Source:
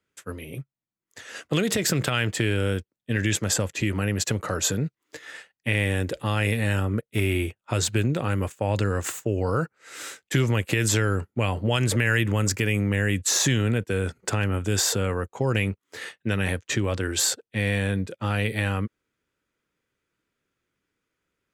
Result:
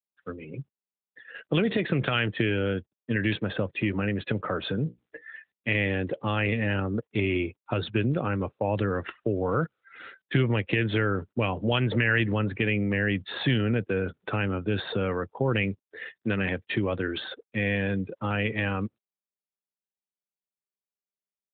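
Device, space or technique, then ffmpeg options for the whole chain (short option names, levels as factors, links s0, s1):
mobile call with aggressive noise cancelling: -filter_complex "[0:a]asplit=3[s0][s1][s2];[s0]afade=t=out:st=4.85:d=0.02[s3];[s1]bandreject=f=60:t=h:w=6,bandreject=f=120:t=h:w=6,bandreject=f=180:t=h:w=6,bandreject=f=240:t=h:w=6,bandreject=f=300:t=h:w=6,bandreject=f=360:t=h:w=6,bandreject=f=420:t=h:w=6,bandreject=f=480:t=h:w=6,bandreject=f=540:t=h:w=6,afade=t=in:st=4.85:d=0.02,afade=t=out:st=5.69:d=0.02[s4];[s2]afade=t=in:st=5.69:d=0.02[s5];[s3][s4][s5]amix=inputs=3:normalize=0,highpass=110,afftdn=nr=28:nf=-39" -ar 8000 -c:a libopencore_amrnb -b:a 12200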